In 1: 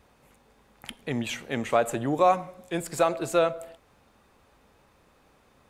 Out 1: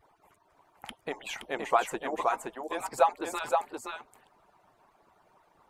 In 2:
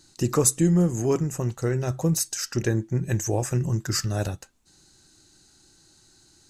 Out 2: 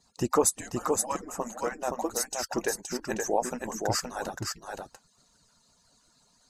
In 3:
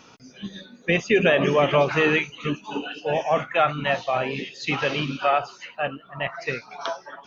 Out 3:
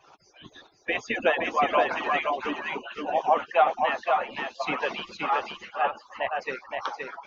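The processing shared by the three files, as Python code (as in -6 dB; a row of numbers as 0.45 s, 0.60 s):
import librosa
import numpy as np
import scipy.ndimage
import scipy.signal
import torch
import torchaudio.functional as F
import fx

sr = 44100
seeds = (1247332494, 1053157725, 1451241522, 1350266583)

p1 = fx.hpss_only(x, sr, part='percussive')
p2 = fx.peak_eq(p1, sr, hz=880.0, db=12.0, octaves=1.3)
p3 = p2 + fx.echo_single(p2, sr, ms=521, db=-4.0, dry=0)
y = librosa.util.normalize(p3) * 10.0 ** (-9 / 20.0)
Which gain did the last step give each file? -5.5 dB, -4.5 dB, -7.0 dB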